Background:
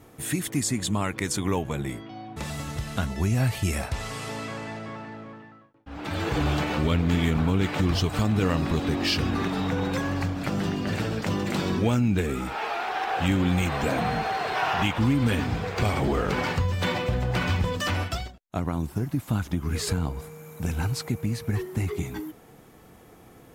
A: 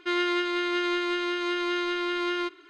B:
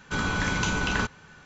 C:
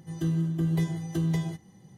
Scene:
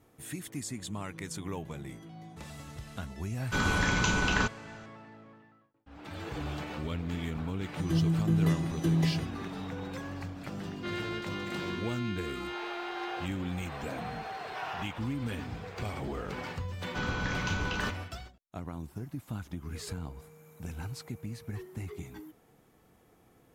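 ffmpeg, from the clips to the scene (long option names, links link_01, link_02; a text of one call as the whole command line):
ffmpeg -i bed.wav -i cue0.wav -i cue1.wav -i cue2.wav -filter_complex "[3:a]asplit=2[link_01][link_02];[2:a]asplit=2[link_03][link_04];[0:a]volume=-12dB[link_05];[link_01]alimiter=level_in=4dB:limit=-24dB:level=0:latency=1:release=71,volume=-4dB[link_06];[link_04]lowpass=frequency=6000:width=0.5412,lowpass=frequency=6000:width=1.3066[link_07];[link_06]atrim=end=1.97,asetpts=PTS-STARTPTS,volume=-16dB,afade=type=in:duration=0.004:curve=hsin,afade=type=out:start_time=1.966:duration=0.004:curve=hsin,adelay=880[link_08];[link_03]atrim=end=1.45,asetpts=PTS-STARTPTS,volume=-1dB,afade=type=in:duration=0.004:curve=hsin,afade=type=out:start_time=1.446:duration=0.004:curve=hsin,adelay=150381S[link_09];[link_02]atrim=end=1.97,asetpts=PTS-STARTPTS,afade=type=in:duration=0.004:curve=hsin,afade=type=out:start_time=1.966:duration=0.004:curve=hsin,adelay=7690[link_10];[1:a]atrim=end=2.69,asetpts=PTS-STARTPTS,volume=-11.5dB,afade=type=in:duration=0.004:curve=hsin,afade=type=out:start_time=2.686:duration=0.004:curve=hsin,adelay=10770[link_11];[link_07]atrim=end=1.45,asetpts=PTS-STARTPTS,volume=-7dB,afade=type=in:duration=0.004:curve=hsin,afade=type=out:start_time=1.446:duration=0.004:curve=hsin,adelay=742644S[link_12];[link_05][link_08][link_09][link_10][link_11][link_12]amix=inputs=6:normalize=0" out.wav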